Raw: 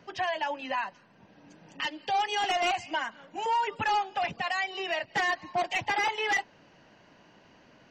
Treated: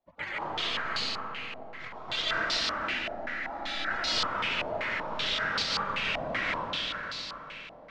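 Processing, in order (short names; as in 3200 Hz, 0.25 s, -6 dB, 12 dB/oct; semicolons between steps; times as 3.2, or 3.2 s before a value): notches 50/100/150/200/250 Hz; spectral gate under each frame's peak -30 dB weak; in parallel at +3 dB: limiter -43.5 dBFS, peak gain reduction 10 dB; 2.38–3.91 on the sum: fixed phaser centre 690 Hz, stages 8; diffused feedback echo 0.502 s, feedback 56%, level -10.5 dB; sample-and-hold 4×; reverb RT60 2.7 s, pre-delay 95 ms, DRR -8 dB; stepped low-pass 5.2 Hz 720–4400 Hz; gain +4.5 dB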